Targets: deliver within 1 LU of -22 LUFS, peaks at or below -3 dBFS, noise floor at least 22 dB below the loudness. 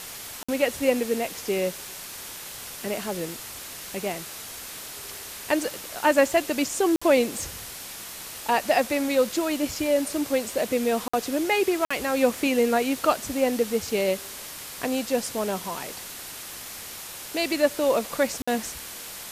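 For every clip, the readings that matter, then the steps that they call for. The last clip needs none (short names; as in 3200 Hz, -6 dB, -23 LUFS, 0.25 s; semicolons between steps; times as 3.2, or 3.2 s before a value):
dropouts 5; longest dropout 55 ms; noise floor -39 dBFS; noise floor target -49 dBFS; loudness -26.5 LUFS; peak -6.5 dBFS; loudness target -22.0 LUFS
-> interpolate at 0.43/6.96/11.08/11.85/18.42, 55 ms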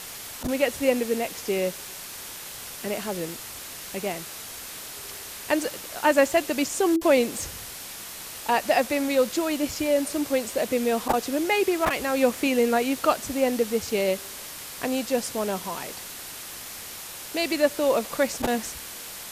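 dropouts 0; noise floor -39 dBFS; noise floor target -48 dBFS
-> denoiser 9 dB, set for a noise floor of -39 dBFS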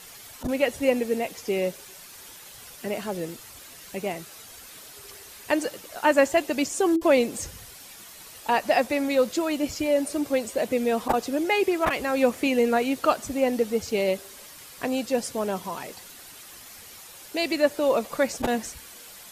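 noise floor -46 dBFS; noise floor target -48 dBFS
-> denoiser 6 dB, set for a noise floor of -46 dBFS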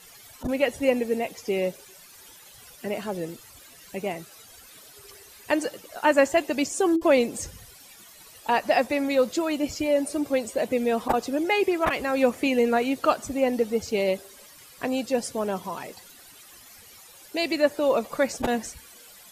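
noise floor -50 dBFS; loudness -25.5 LUFS; peak -7.0 dBFS; loudness target -22.0 LUFS
-> gain +3.5 dB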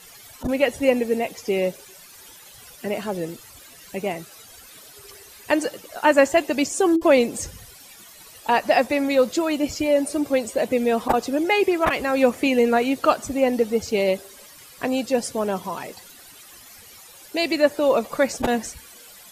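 loudness -22.0 LUFS; peak -3.5 dBFS; noise floor -46 dBFS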